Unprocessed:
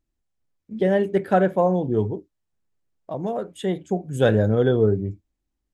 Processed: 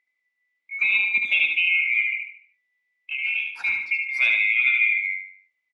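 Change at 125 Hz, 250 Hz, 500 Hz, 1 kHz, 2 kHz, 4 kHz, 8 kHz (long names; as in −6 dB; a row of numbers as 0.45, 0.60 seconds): below −40 dB, below −35 dB, below −35 dB, below −20 dB, +17.0 dB, +10.0 dB, can't be measured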